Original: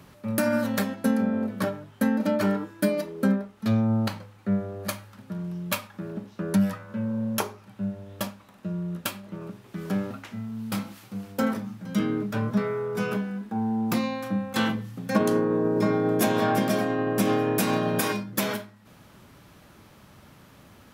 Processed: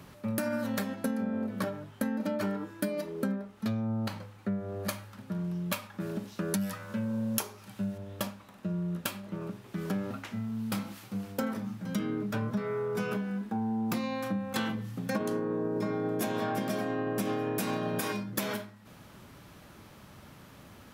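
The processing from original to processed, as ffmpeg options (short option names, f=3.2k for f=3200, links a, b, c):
-filter_complex "[0:a]asettb=1/sr,asplit=3[a][b][c];[a]atrim=end=6.004[d];[b]atrim=start=6:end=7.98,asetpts=PTS-STARTPTS,afade=t=in:d=0.004:c=qsin,afade=t=out:st=1.976:d=0.004:c=qsin,highshelf=f=2.9k:g=11.5[e];[c]atrim=start=7.976[f];[d][e]acrossfade=d=0.004:c1=hsin:c2=qsin[g];[g][f]acrossfade=d=0.004:c1=qsin:c2=hsin,acompressor=threshold=-29dB:ratio=5"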